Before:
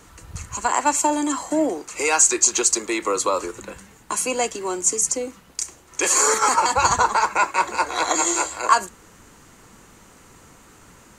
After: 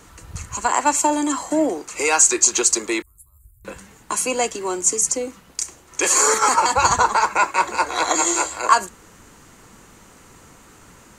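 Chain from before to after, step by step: 3.02–3.65 s: inverse Chebyshev band-stop 220–6200 Hz, stop band 50 dB; trim +1.5 dB

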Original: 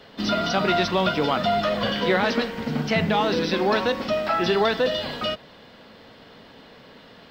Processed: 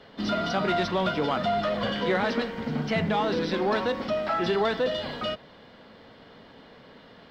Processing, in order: low-pass 3.5 kHz 6 dB/octave; band-stop 2.6 kHz, Q 17; in parallel at -5 dB: saturation -22.5 dBFS, distortion -10 dB; on the sum: trim -6 dB

